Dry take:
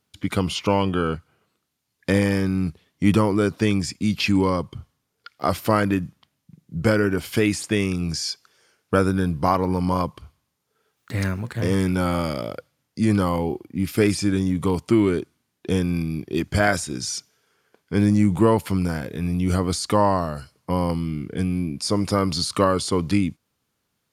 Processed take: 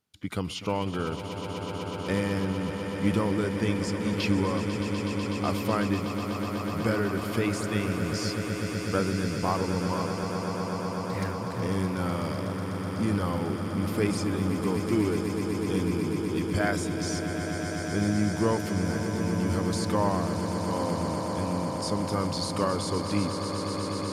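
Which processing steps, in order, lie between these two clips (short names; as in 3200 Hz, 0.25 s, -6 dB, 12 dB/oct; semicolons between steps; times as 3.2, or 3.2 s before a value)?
swelling echo 0.124 s, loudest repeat 8, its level -11 dB; gain -8.5 dB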